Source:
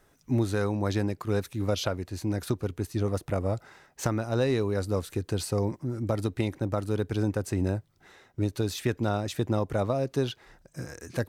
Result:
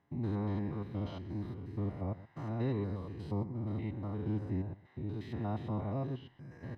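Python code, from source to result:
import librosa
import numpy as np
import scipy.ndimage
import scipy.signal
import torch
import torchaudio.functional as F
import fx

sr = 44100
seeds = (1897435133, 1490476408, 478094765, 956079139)

y = fx.spec_steps(x, sr, hold_ms=200)
y = scipy.signal.sosfilt(scipy.signal.butter(2, 110.0, 'highpass', fs=sr, output='sos'), y)
y = fx.high_shelf(y, sr, hz=4900.0, db=4.5)
y = fx.notch(y, sr, hz=1300.0, q=11.0)
y = y + 0.52 * np.pad(y, (int(1.0 * sr / 1000.0), 0))[:len(y)]
y = fx.stretch_vocoder(y, sr, factor=0.6)
y = fx.air_absorb(y, sr, metres=410.0)
y = y + 10.0 ** (-17.5 / 20.0) * np.pad(y, (int(124 * sr / 1000.0), 0))[:len(y)]
y = y * librosa.db_to_amplitude(-4.5)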